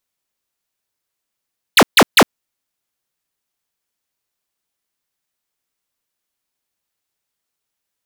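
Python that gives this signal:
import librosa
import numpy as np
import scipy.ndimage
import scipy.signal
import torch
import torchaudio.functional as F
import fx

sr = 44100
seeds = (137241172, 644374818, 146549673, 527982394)

y = fx.laser_zaps(sr, level_db=-7.0, start_hz=4800.0, end_hz=160.0, length_s=0.06, wave='square', shots=3, gap_s=0.14)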